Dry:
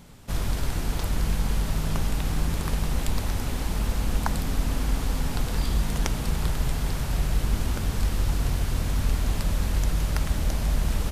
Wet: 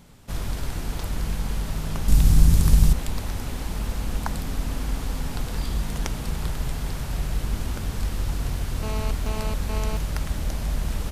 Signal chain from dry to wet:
0:02.08–0:02.93: bass and treble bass +13 dB, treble +10 dB
0:08.83–0:09.97: phone interference −32 dBFS
level −2 dB

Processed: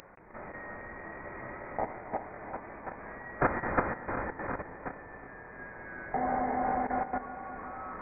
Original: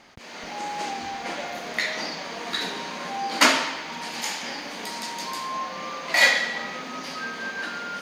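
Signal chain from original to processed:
feedback delay that plays each chunk backwards 181 ms, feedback 76%, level −0.5 dB
low-shelf EQ 460 Hz −7 dB
upward compression, threshold −29 dBFS
first difference
output level in coarse steps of 11 dB
voice inversion scrambler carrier 2,700 Hz
level +6.5 dB

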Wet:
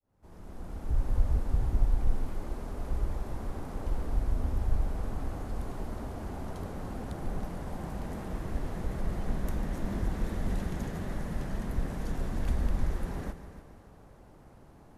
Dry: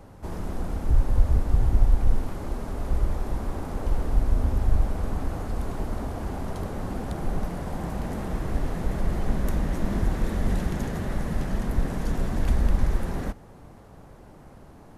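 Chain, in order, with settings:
fade in at the beginning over 1.11 s
echo machine with several playback heads 146 ms, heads first and second, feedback 45%, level −15 dB
level −7 dB

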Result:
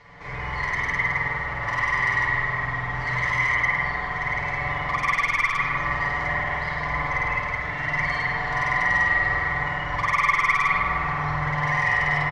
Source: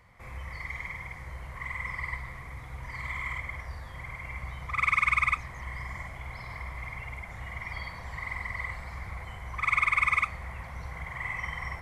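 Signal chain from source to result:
variable-slope delta modulation 64 kbit/s
low-pass filter 5,400 Hz 24 dB per octave
low-shelf EQ 130 Hz −8 dB
comb filter 6.6 ms, depth 76%
in parallel at +2 dB: compressor whose output falls as the input rises −33 dBFS, ratio −0.5
on the sum: soft clipping −20.5 dBFS, distortion −14 dB
on a send: bucket-brigade delay 147 ms, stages 2,048, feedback 69%, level −5 dB
on the sum: spring reverb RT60 1 s, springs 45 ms, chirp 55 ms, DRR −4.5 dB
wrong playback speed 25 fps video run at 24 fps
level −1.5 dB

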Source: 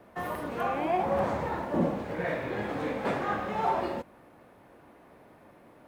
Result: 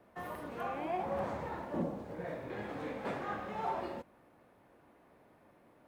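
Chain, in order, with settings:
0:01.82–0:02.50: parametric band 2,300 Hz −7.5 dB 1.8 octaves
level −8.5 dB

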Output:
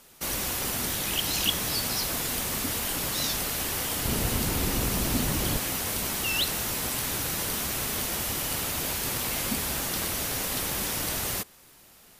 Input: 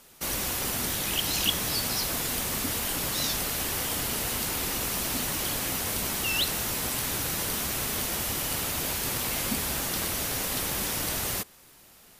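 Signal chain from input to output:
0:04.05–0:05.58: low-shelf EQ 380 Hz +10.5 dB

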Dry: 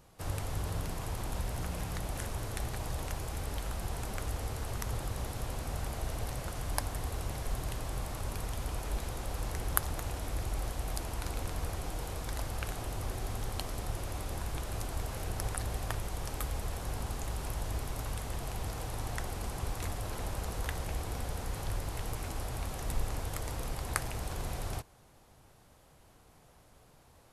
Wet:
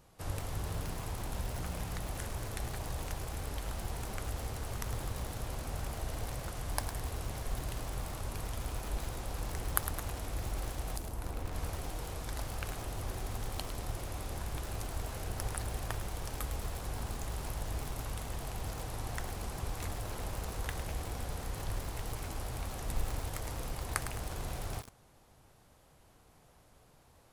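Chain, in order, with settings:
in parallel at −10 dB: comparator with hysteresis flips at −24.5 dBFS
0:10.96–0:11.53: on the sum: parametric band 1,800 Hz → 11,000 Hz −8.5 dB 2.9 octaves
feedback echo at a low word length 106 ms, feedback 55%, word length 6 bits, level −9 dB
level −2 dB

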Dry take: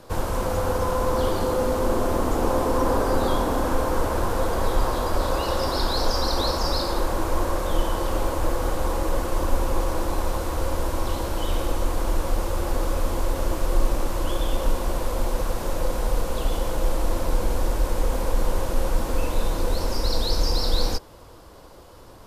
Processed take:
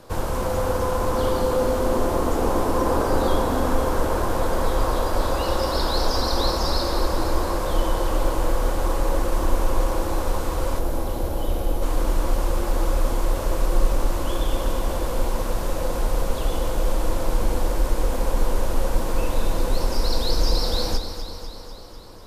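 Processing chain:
gain on a spectral selection 0:10.79–0:11.82, 860–10,000 Hz −7 dB
delay that swaps between a low-pass and a high-pass 124 ms, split 860 Hz, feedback 80%, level −7.5 dB

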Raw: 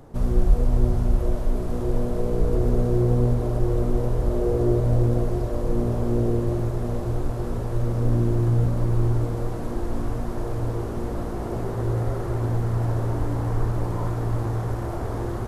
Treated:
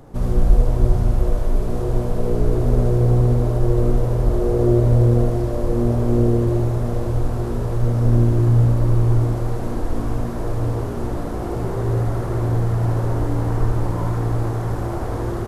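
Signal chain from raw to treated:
on a send: single-tap delay 76 ms −4 dB
on the sum: level +2.5 dB

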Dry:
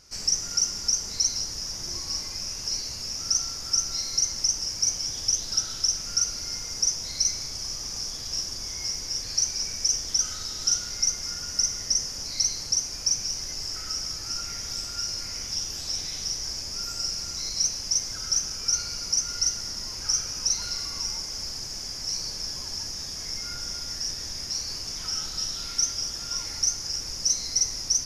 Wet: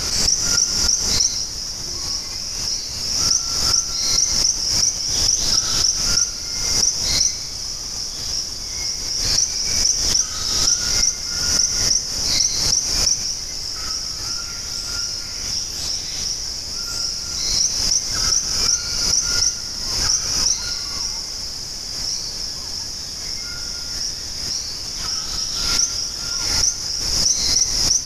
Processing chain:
background raised ahead of every attack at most 31 dB per second
level +5.5 dB

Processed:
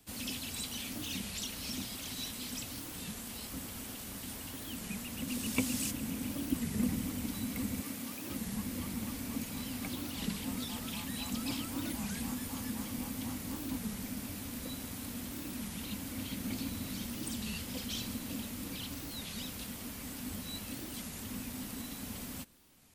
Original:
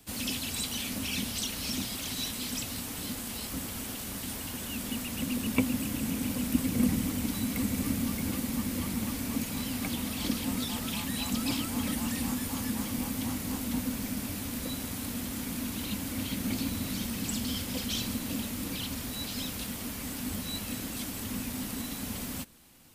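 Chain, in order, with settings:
0:05.27–0:05.90: parametric band 6,600 Hz +4.5 dB → +13.5 dB 2.1 octaves
0:07.80–0:08.32: high-pass filter 410 Hz 6 dB per octave
wow of a warped record 33 1/3 rpm, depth 250 cents
level −6 dB

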